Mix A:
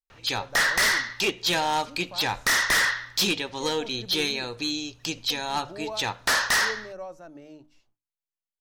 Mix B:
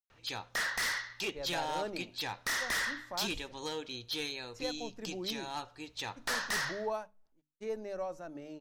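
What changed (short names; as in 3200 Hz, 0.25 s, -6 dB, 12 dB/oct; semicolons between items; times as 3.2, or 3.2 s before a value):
speech: entry +1.00 s; background -11.5 dB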